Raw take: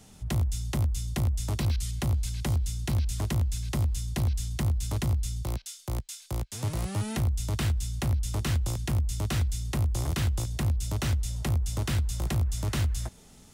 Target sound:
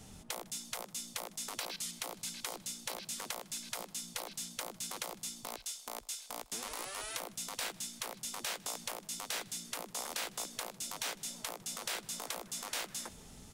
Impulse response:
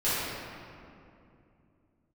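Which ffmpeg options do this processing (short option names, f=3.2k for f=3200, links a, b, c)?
-af "afftfilt=real='re*lt(hypot(re,im),0.0398)':imag='im*lt(hypot(re,im),0.0398)':win_size=1024:overlap=0.75,aecho=1:1:154|308|462|616:0.0708|0.0382|0.0206|0.0111"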